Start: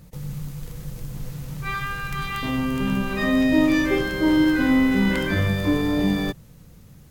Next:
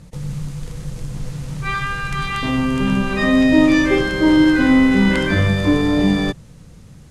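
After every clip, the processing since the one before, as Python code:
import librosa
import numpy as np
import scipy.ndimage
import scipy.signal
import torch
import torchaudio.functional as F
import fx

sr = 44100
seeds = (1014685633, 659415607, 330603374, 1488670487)

y = scipy.signal.sosfilt(scipy.signal.butter(4, 10000.0, 'lowpass', fs=sr, output='sos'), x)
y = F.gain(torch.from_numpy(y), 5.5).numpy()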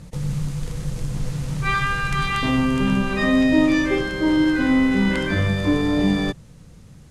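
y = fx.rider(x, sr, range_db=5, speed_s=2.0)
y = F.gain(torch.from_numpy(y), -3.5).numpy()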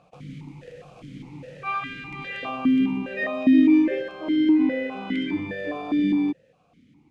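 y = fx.vowel_held(x, sr, hz=4.9)
y = F.gain(torch.from_numpy(y), 5.0).numpy()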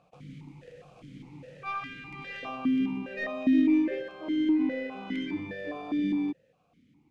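y = fx.tracing_dist(x, sr, depth_ms=0.021)
y = F.gain(torch.from_numpy(y), -6.5).numpy()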